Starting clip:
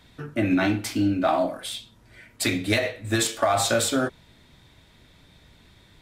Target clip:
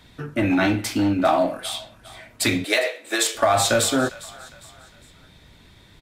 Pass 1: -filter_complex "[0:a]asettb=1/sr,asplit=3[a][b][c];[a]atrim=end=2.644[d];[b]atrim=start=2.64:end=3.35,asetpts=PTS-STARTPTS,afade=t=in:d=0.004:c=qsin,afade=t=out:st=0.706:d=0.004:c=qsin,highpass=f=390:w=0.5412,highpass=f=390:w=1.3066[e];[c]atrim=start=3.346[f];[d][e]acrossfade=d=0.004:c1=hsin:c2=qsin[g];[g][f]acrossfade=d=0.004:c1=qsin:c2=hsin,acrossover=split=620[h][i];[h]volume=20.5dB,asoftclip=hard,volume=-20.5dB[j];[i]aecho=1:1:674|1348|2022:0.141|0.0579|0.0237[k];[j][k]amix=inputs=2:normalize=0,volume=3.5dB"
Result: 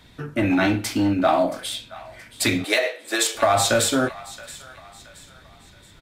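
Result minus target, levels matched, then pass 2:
echo 0.269 s late
-filter_complex "[0:a]asettb=1/sr,asplit=3[a][b][c];[a]atrim=end=2.644[d];[b]atrim=start=2.64:end=3.35,asetpts=PTS-STARTPTS,afade=t=in:d=0.004:c=qsin,afade=t=out:st=0.706:d=0.004:c=qsin,highpass=f=390:w=0.5412,highpass=f=390:w=1.3066[e];[c]atrim=start=3.346[f];[d][e]acrossfade=d=0.004:c1=hsin:c2=qsin[g];[g][f]acrossfade=d=0.004:c1=qsin:c2=hsin,acrossover=split=620[h][i];[h]volume=20.5dB,asoftclip=hard,volume=-20.5dB[j];[i]aecho=1:1:405|810|1215:0.141|0.0579|0.0237[k];[j][k]amix=inputs=2:normalize=0,volume=3.5dB"

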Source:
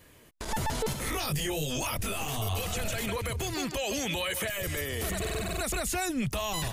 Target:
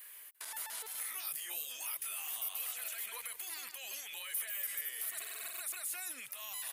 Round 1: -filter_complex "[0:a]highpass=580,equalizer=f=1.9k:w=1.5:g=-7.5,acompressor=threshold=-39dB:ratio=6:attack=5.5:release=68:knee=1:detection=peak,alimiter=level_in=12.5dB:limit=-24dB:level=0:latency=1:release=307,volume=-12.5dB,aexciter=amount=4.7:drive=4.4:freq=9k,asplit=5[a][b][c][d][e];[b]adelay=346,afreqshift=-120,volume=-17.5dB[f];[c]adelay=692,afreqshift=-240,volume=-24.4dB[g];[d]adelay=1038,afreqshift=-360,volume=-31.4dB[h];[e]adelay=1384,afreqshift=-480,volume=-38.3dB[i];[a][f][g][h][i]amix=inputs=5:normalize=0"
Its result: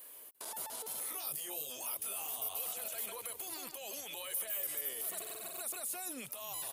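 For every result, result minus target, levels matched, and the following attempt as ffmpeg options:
500 Hz band +10.5 dB; 2000 Hz band -5.0 dB
-filter_complex "[0:a]highpass=1.3k,equalizer=f=1.9k:w=1.5:g=-7.5,acompressor=threshold=-39dB:ratio=6:attack=5.5:release=68:knee=1:detection=peak,alimiter=level_in=12.5dB:limit=-24dB:level=0:latency=1:release=307,volume=-12.5dB,aexciter=amount=4.7:drive=4.4:freq=9k,asplit=5[a][b][c][d][e];[b]adelay=346,afreqshift=-120,volume=-17.5dB[f];[c]adelay=692,afreqshift=-240,volume=-24.4dB[g];[d]adelay=1038,afreqshift=-360,volume=-31.4dB[h];[e]adelay=1384,afreqshift=-480,volume=-38.3dB[i];[a][f][g][h][i]amix=inputs=5:normalize=0"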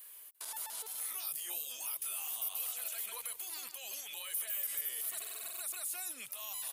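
2000 Hz band -5.5 dB
-filter_complex "[0:a]highpass=1.3k,equalizer=f=1.9k:w=1.5:g=2,acompressor=threshold=-39dB:ratio=6:attack=5.5:release=68:knee=1:detection=peak,alimiter=level_in=12.5dB:limit=-24dB:level=0:latency=1:release=307,volume=-12.5dB,aexciter=amount=4.7:drive=4.4:freq=9k,asplit=5[a][b][c][d][e];[b]adelay=346,afreqshift=-120,volume=-17.5dB[f];[c]adelay=692,afreqshift=-240,volume=-24.4dB[g];[d]adelay=1038,afreqshift=-360,volume=-31.4dB[h];[e]adelay=1384,afreqshift=-480,volume=-38.3dB[i];[a][f][g][h][i]amix=inputs=5:normalize=0"

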